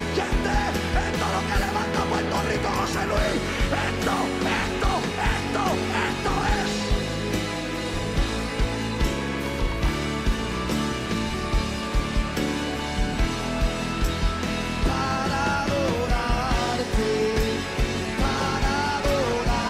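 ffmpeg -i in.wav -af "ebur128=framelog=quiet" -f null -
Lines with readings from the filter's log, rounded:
Integrated loudness:
  I:         -25.1 LUFS
  Threshold: -35.1 LUFS
Loudness range:
  LRA:         2.2 LU
  Threshold: -45.2 LUFS
  LRA low:   -26.4 LUFS
  LRA high:  -24.3 LUFS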